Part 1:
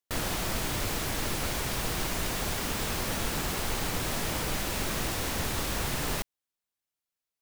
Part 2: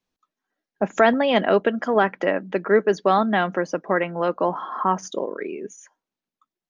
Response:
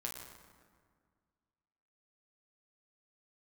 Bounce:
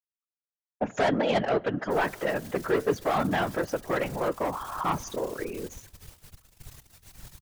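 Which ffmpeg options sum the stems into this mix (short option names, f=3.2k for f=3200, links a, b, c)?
-filter_complex "[0:a]asubboost=boost=5.5:cutoff=70,aeval=exprs='(tanh(11.2*val(0)+0.7)-tanh(0.7))/11.2':c=same,highshelf=f=3.7k:g=10.5,adelay=1800,volume=-12.5dB[a];[1:a]volume=2dB,asplit=2[b][c];[c]volume=-20.5dB[d];[2:a]atrim=start_sample=2205[e];[d][e]afir=irnorm=-1:irlink=0[f];[a][b][f]amix=inputs=3:normalize=0,agate=range=-33dB:threshold=-32dB:ratio=3:detection=peak,asoftclip=type=tanh:threshold=-13dB,afftfilt=real='hypot(re,im)*cos(2*PI*random(0))':imag='hypot(re,im)*sin(2*PI*random(1))':win_size=512:overlap=0.75"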